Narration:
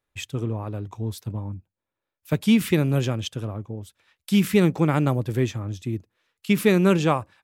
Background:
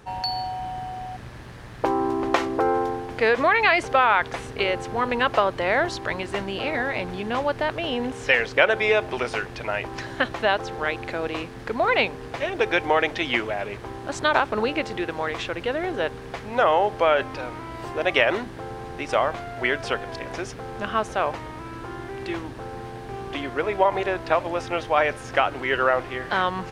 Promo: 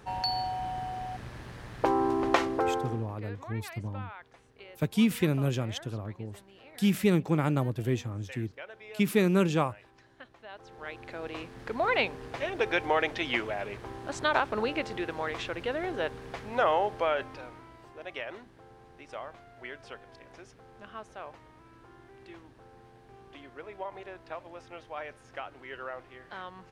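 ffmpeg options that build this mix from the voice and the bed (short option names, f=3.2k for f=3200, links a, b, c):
-filter_complex "[0:a]adelay=2500,volume=-6dB[a];[1:a]volume=17.5dB,afade=t=out:st=2.37:d=0.83:silence=0.0668344,afade=t=in:st=10.48:d=1.39:silence=0.0944061,afade=t=out:st=16.68:d=1.17:silence=0.223872[b];[a][b]amix=inputs=2:normalize=0"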